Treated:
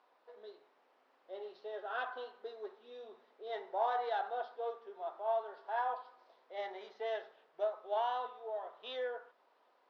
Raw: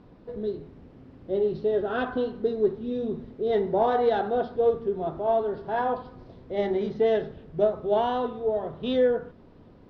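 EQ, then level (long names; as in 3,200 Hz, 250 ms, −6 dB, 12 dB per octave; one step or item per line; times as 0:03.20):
four-pole ladder high-pass 620 Hz, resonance 25%
−2.5 dB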